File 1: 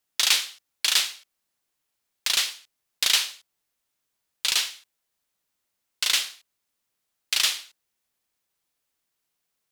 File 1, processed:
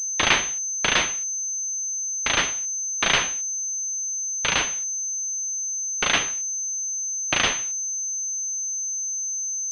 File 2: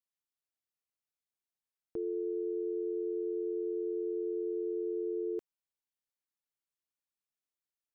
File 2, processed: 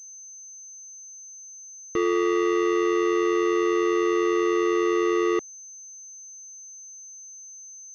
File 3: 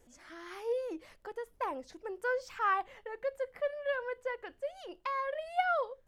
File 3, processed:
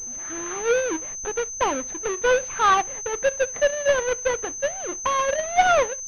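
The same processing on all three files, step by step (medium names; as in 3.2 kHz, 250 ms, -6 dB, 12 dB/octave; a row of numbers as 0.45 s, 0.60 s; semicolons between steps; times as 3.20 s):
square wave that keeps the level; class-D stage that switches slowly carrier 6.2 kHz; normalise loudness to -23 LUFS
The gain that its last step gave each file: +3.0 dB, +10.0 dB, +9.5 dB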